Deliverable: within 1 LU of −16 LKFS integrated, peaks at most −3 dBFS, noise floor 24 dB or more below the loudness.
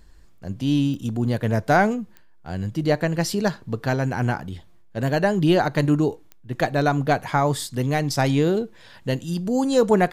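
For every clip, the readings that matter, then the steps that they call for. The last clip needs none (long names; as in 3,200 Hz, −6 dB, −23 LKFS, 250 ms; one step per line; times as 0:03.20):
number of clicks 4; integrated loudness −22.5 LKFS; sample peak −6.0 dBFS; target loudness −16.0 LKFS
→ click removal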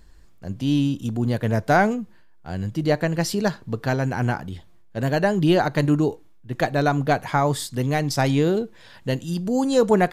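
number of clicks 0; integrated loudness −22.5 LKFS; sample peak −6.0 dBFS; target loudness −16.0 LKFS
→ level +6.5 dB
brickwall limiter −3 dBFS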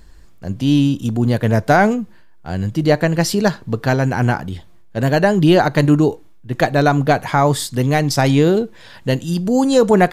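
integrated loudness −16.5 LKFS; sample peak −3.0 dBFS; background noise floor −42 dBFS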